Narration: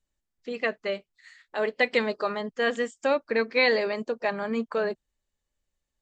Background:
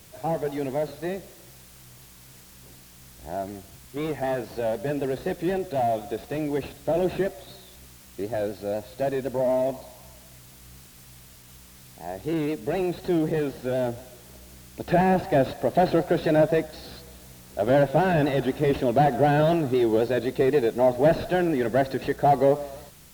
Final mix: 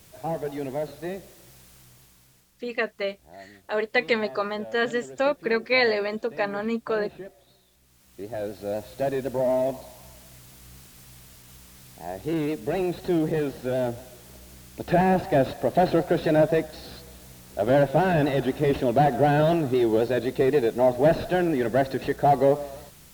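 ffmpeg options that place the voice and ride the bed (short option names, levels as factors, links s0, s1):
-filter_complex "[0:a]adelay=2150,volume=1.12[s0];[1:a]volume=3.98,afade=t=out:st=1.7:d=0.82:silence=0.251189,afade=t=in:st=7.84:d=0.99:silence=0.188365[s1];[s0][s1]amix=inputs=2:normalize=0"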